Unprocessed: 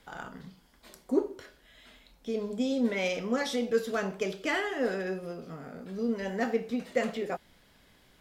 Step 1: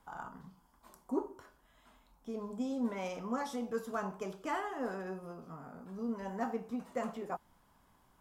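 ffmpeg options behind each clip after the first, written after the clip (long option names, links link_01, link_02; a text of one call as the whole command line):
ffmpeg -i in.wav -af "equalizer=frequency=500:width_type=o:width=1:gain=-7,equalizer=frequency=1000:width_type=o:width=1:gain=12,equalizer=frequency=2000:width_type=o:width=1:gain=-9,equalizer=frequency=4000:width_type=o:width=1:gain=-10,volume=-5.5dB" out.wav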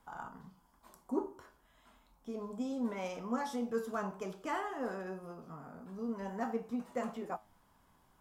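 ffmpeg -i in.wav -af "flanger=delay=8.2:depth=5.8:regen=79:speed=0.29:shape=sinusoidal,volume=4dB" out.wav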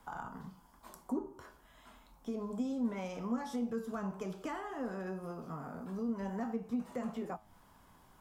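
ffmpeg -i in.wav -filter_complex "[0:a]acrossover=split=220[link_01][link_02];[link_02]acompressor=threshold=-46dB:ratio=5[link_03];[link_01][link_03]amix=inputs=2:normalize=0,volume=6dB" out.wav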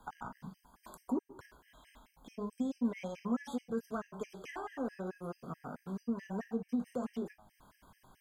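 ffmpeg -i in.wav -af "afftfilt=real='re*gt(sin(2*PI*4.6*pts/sr)*(1-2*mod(floor(b*sr/1024/1600),2)),0)':imag='im*gt(sin(2*PI*4.6*pts/sr)*(1-2*mod(floor(b*sr/1024/1600),2)),0)':win_size=1024:overlap=0.75,volume=2dB" out.wav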